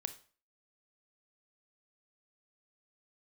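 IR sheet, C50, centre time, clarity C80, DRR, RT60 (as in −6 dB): 13.5 dB, 6 ms, 18.5 dB, 9.5 dB, 0.40 s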